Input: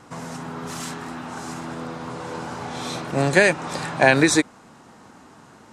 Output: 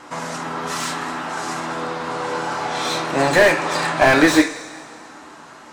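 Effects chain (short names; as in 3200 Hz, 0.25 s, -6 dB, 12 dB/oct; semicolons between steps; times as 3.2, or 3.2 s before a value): overdrive pedal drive 15 dB, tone 4900 Hz, clips at -1.5 dBFS; two-slope reverb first 0.26 s, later 1.9 s, from -18 dB, DRR 3 dB; slew limiter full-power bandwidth 450 Hz; gain -1 dB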